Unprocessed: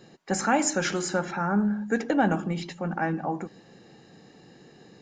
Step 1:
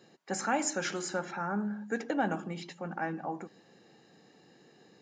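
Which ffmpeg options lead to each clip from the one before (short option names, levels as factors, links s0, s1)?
-af "highpass=f=230:p=1,volume=0.501"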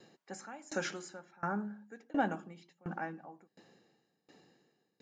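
-af "aeval=exprs='val(0)*pow(10,-27*if(lt(mod(1.4*n/s,1),2*abs(1.4)/1000),1-mod(1.4*n/s,1)/(2*abs(1.4)/1000),(mod(1.4*n/s,1)-2*abs(1.4)/1000)/(1-2*abs(1.4)/1000))/20)':c=same,volume=1.19"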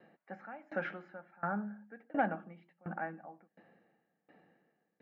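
-af "aeval=exprs='0.119*(cos(1*acos(clip(val(0)/0.119,-1,1)))-cos(1*PI/2))+0.0335*(cos(2*acos(clip(val(0)/0.119,-1,1)))-cos(2*PI/2))+0.0106*(cos(4*acos(clip(val(0)/0.119,-1,1)))-cos(4*PI/2))':c=same,highpass=120,equalizer=f=130:t=q:w=4:g=-7,equalizer=f=270:t=q:w=4:g=-4,equalizer=f=390:t=q:w=4:g=-9,equalizer=f=660:t=q:w=4:g=3,equalizer=f=1000:t=q:w=4:g=-6,lowpass=f=2200:w=0.5412,lowpass=f=2200:w=1.3066,volume=1.19"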